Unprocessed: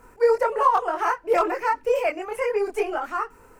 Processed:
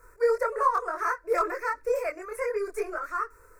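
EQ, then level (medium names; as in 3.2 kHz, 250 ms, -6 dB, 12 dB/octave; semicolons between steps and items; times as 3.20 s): peaking EQ 240 Hz -7 dB 2.8 oct; static phaser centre 810 Hz, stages 6; 0.0 dB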